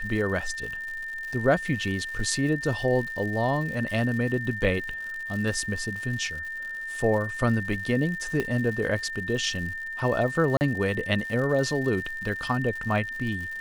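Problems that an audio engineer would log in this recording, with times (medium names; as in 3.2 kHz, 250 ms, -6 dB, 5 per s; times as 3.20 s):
crackle 160 per s -35 dBFS
whine 1.8 kHz -32 dBFS
8.40 s: pop -15 dBFS
10.57–10.61 s: dropout 39 ms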